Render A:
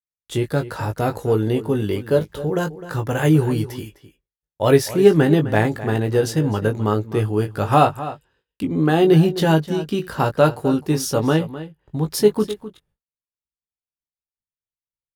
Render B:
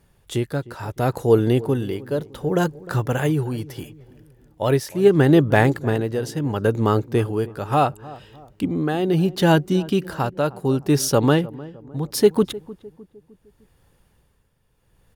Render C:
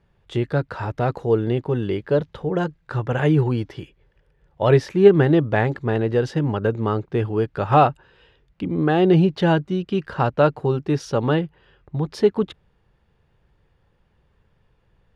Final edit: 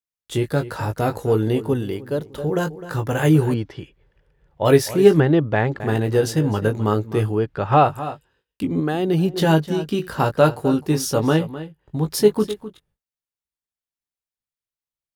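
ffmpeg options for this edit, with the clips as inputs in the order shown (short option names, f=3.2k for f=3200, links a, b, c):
-filter_complex "[1:a]asplit=2[a][b];[2:a]asplit=3[c][d][e];[0:a]asplit=6[f][g][h][i][j][k];[f]atrim=end=1.732[l];[a]atrim=start=1.728:end=2.382[m];[g]atrim=start=2.378:end=3.542[n];[c]atrim=start=3.538:end=4.652[o];[h]atrim=start=4.648:end=5.202[p];[d]atrim=start=5.198:end=5.802[q];[i]atrim=start=5.798:end=7.41[r];[e]atrim=start=7.31:end=7.92[s];[j]atrim=start=7.82:end=8.802[t];[b]atrim=start=8.798:end=9.342[u];[k]atrim=start=9.338[v];[l][m]acrossfade=d=0.004:c1=hsin:c2=hsin[w];[w][n]acrossfade=d=0.004:c1=hsin:c2=hsin[x];[x][o]acrossfade=d=0.004:c1=hsin:c2=hsin[y];[y][p]acrossfade=d=0.004:c1=hsin:c2=hsin[z];[z][q]acrossfade=d=0.004:c1=hsin:c2=hsin[aa];[aa][r]acrossfade=d=0.004:c1=hsin:c2=hsin[ab];[ab][s]acrossfade=d=0.1:c1=tri:c2=tri[ac];[ac][t]acrossfade=d=0.1:c1=tri:c2=tri[ad];[ad][u]acrossfade=d=0.004:c1=hsin:c2=hsin[ae];[ae][v]acrossfade=d=0.004:c1=hsin:c2=hsin"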